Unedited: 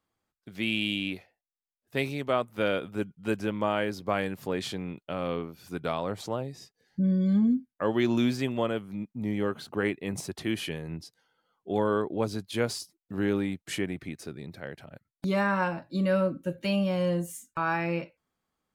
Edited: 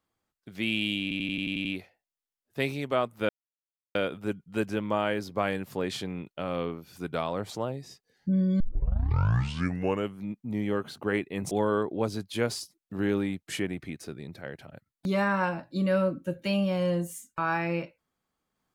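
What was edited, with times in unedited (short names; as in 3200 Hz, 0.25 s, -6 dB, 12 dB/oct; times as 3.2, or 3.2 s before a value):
1.02 stutter 0.09 s, 8 plays
2.66 insert silence 0.66 s
7.31 tape start 1.56 s
10.22–11.7 cut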